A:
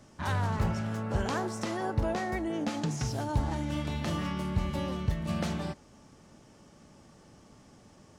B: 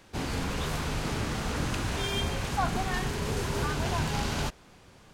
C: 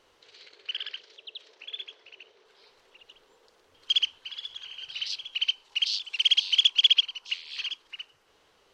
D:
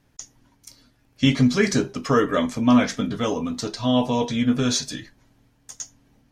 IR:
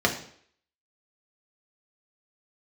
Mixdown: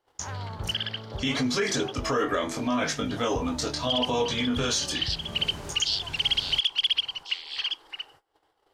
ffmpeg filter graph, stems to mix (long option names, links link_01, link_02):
-filter_complex "[0:a]afwtdn=0.0141,volume=-12.5dB[link_01];[1:a]acompressor=threshold=-53dB:ratio=1.5,adelay=2100,volume=-0.5dB[link_02];[2:a]equalizer=frequency=315:width_type=o:width=0.33:gain=6,equalizer=frequency=800:width_type=o:width=0.33:gain=10,equalizer=frequency=2500:width_type=o:width=0.33:gain=-9,equalizer=frequency=4000:width_type=o:width=0.33:gain=-5,equalizer=frequency=6300:width_type=o:width=0.33:gain=-10,volume=0.5dB[link_03];[3:a]lowshelf=frequency=200:gain=-9.5,flanger=delay=19:depth=4.6:speed=0.7,volume=-2dB,asplit=2[link_04][link_05];[link_05]apad=whole_len=318986[link_06];[link_02][link_06]sidechaincompress=threshold=-40dB:ratio=8:attack=16:release=552[link_07];[link_01][link_03][link_04]amix=inputs=3:normalize=0,acontrast=85,alimiter=limit=-16.5dB:level=0:latency=1:release=58,volume=0dB[link_08];[link_07][link_08]amix=inputs=2:normalize=0,agate=range=-22dB:threshold=-52dB:ratio=16:detection=peak,equalizer=frequency=200:width_type=o:width=0.62:gain=-7"